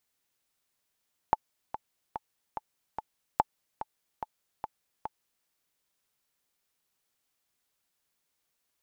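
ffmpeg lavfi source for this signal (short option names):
-f lavfi -i "aevalsrc='pow(10,(-8.5-12.5*gte(mod(t,5*60/145),60/145))/20)*sin(2*PI*868*mod(t,60/145))*exp(-6.91*mod(t,60/145)/0.03)':d=4.13:s=44100"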